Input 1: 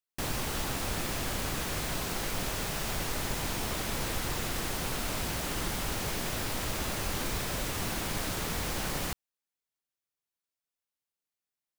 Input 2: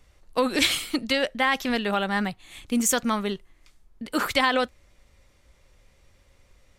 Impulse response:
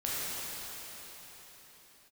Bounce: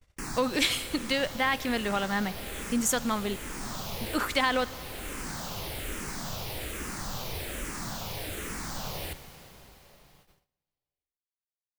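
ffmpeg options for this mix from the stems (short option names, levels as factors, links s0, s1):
-filter_complex "[0:a]asplit=2[s0][s1];[s1]afreqshift=-1.2[s2];[s0][s2]amix=inputs=2:normalize=1,volume=0.841,asplit=2[s3][s4];[s4]volume=0.168[s5];[1:a]volume=0.596,asplit=3[s6][s7][s8];[s7]volume=0.0668[s9];[s8]apad=whole_len=519821[s10];[s3][s10]sidechaincompress=threshold=0.0282:ratio=8:attack=16:release=878[s11];[2:a]atrim=start_sample=2205[s12];[s5][s9]amix=inputs=2:normalize=0[s13];[s13][s12]afir=irnorm=-1:irlink=0[s14];[s11][s6][s14]amix=inputs=3:normalize=0,agate=range=0.0562:threshold=0.00112:ratio=16:detection=peak"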